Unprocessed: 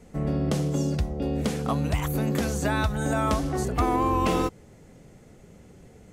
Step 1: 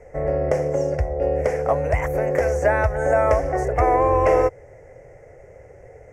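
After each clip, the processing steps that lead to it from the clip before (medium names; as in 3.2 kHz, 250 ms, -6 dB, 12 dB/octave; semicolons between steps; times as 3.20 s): FFT filter 120 Hz 0 dB, 210 Hz -21 dB, 540 Hz +12 dB, 1.2 kHz -4 dB, 2 kHz +7 dB, 3.8 kHz -29 dB, 5.5 kHz -6 dB, 8.3 kHz -12 dB, 13 kHz -15 dB; trim +4 dB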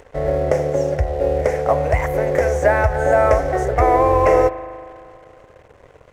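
upward compressor, threshold -40 dBFS; crossover distortion -44.5 dBFS; spring tank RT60 2.4 s, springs 39 ms, chirp 80 ms, DRR 12.5 dB; trim +3.5 dB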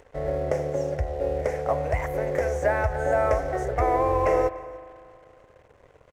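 delay 293 ms -22.5 dB; trim -8 dB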